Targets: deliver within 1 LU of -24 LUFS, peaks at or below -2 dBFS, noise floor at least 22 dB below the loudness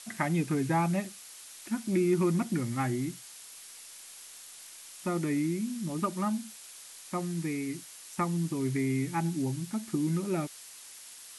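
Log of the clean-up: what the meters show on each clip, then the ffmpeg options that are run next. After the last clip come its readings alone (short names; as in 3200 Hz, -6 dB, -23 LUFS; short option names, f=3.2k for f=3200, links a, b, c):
noise floor -49 dBFS; noise floor target -54 dBFS; loudness -31.5 LUFS; peak -14.5 dBFS; loudness target -24.0 LUFS
-> -af "afftdn=nr=6:nf=-49"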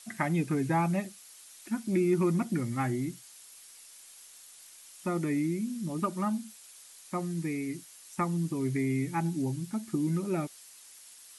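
noise floor -53 dBFS; noise floor target -54 dBFS
-> -af "afftdn=nr=6:nf=-53"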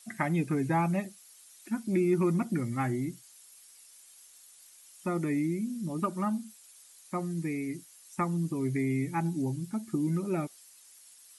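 noise floor -56 dBFS; loudness -31.5 LUFS; peak -14.5 dBFS; loudness target -24.0 LUFS
-> -af "volume=7.5dB"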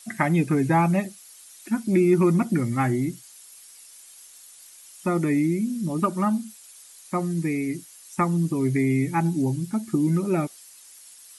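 loudness -24.0 LUFS; peak -7.0 dBFS; noise floor -49 dBFS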